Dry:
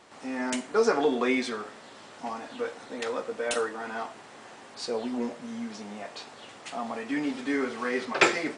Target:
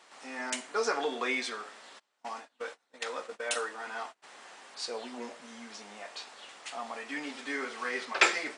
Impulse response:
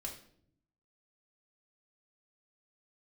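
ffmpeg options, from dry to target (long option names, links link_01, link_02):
-filter_complex "[0:a]highpass=frequency=1100:poles=1,asplit=3[link_01][link_02][link_03];[link_01]afade=type=out:start_time=1.98:duration=0.02[link_04];[link_02]agate=range=-28dB:threshold=-42dB:ratio=16:detection=peak,afade=type=in:start_time=1.98:duration=0.02,afade=type=out:start_time=4.22:duration=0.02[link_05];[link_03]afade=type=in:start_time=4.22:duration=0.02[link_06];[link_04][link_05][link_06]amix=inputs=3:normalize=0"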